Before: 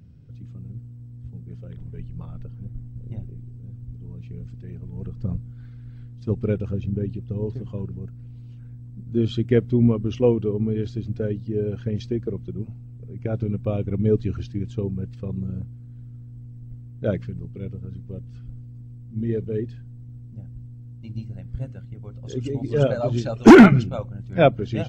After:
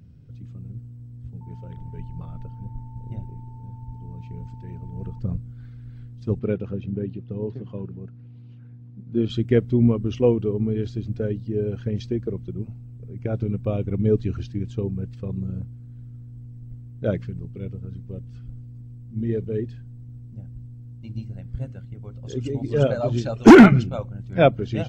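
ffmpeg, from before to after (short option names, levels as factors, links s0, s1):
-filter_complex "[0:a]asettb=1/sr,asplit=3[s0][s1][s2];[s0]atrim=end=1.414[s3];[s1]atrim=start=1.41:end=5.19,asetpts=PTS-STARTPTS,afade=t=in:d=0.004:c=qsin,afade=t=out:st=3.776:d=0.004:c=qsin,aeval=exprs='val(0)+0.00316*sin(2*PI*890*n/s)':c=same[s4];[s2]atrim=start=5.186[s5];[s3][s4]acrossfade=d=0.004:c1=hsin:c2=qsin[s6];[s6][s5]acrossfade=d=0.004:c1=qsin:c2=hsin,asettb=1/sr,asplit=3[s7][s8][s9];[s7]atrim=end=6.394[s10];[s8]atrim=start=6.39:end=9.3,asetpts=PTS-STARTPTS,afade=t=in:d=0.004:c=qsin,afade=t=out:st=2.906:d=0.004:c=qsin,highpass=130,lowpass=3800[s11];[s9]atrim=start=9.296[s12];[s10][s11]acrossfade=d=0.004:c1=hsin:c2=qsin[s13];[s13][s12]acrossfade=d=0.004:c1=qsin:c2=hsin"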